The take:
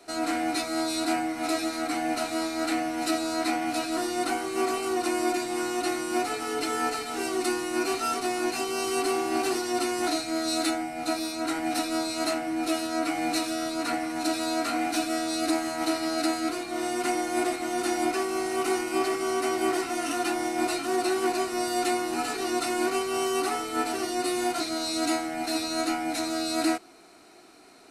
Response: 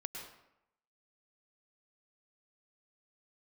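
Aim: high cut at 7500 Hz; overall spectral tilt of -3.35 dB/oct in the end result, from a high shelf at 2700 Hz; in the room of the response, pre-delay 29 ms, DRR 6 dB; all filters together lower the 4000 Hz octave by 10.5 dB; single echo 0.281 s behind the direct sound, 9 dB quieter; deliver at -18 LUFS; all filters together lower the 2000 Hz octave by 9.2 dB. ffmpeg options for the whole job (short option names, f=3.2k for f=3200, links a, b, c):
-filter_complex "[0:a]lowpass=7.5k,equalizer=f=2k:t=o:g=-9,highshelf=f=2.7k:g=-6.5,equalizer=f=4k:t=o:g=-4.5,aecho=1:1:281:0.355,asplit=2[a][b];[1:a]atrim=start_sample=2205,adelay=29[c];[b][c]afir=irnorm=-1:irlink=0,volume=-5dB[d];[a][d]amix=inputs=2:normalize=0,volume=10.5dB"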